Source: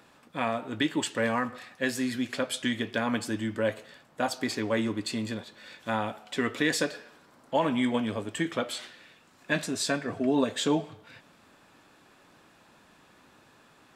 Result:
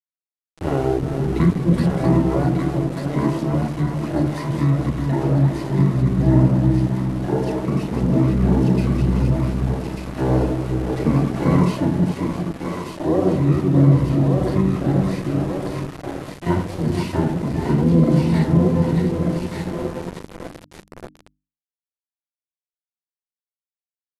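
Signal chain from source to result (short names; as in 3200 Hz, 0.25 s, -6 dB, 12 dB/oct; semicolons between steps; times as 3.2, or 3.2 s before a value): regenerating reverse delay 0.186 s, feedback 61%, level -6 dB; high shelf 2300 Hz -6 dB; spring tank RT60 1.2 s, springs 45/54 ms, chirp 65 ms, DRR 1.5 dB; reverb removal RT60 1.3 s; in parallel at -3 dB: compressor 4:1, threshold -36 dBFS, peak gain reduction 14 dB; on the sum: harmoniser +12 st -7 dB; on a send: split-band echo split 650 Hz, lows 0.228 s, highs 0.686 s, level -3.5 dB; on the sum: sample gate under -30.5 dBFS; vocal rider within 3 dB 2 s; speed mistake 78 rpm record played at 45 rpm; tilt shelf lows +7.5 dB, about 720 Hz; notches 50/100/150/200/250/300 Hz; gain +1 dB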